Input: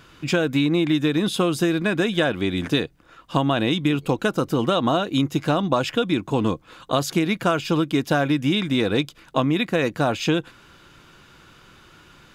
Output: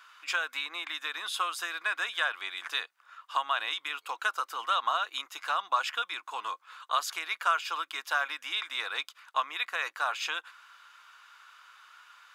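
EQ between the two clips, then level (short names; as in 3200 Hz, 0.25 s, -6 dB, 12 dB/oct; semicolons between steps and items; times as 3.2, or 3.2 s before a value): ladder high-pass 970 Hz, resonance 45%; +2.5 dB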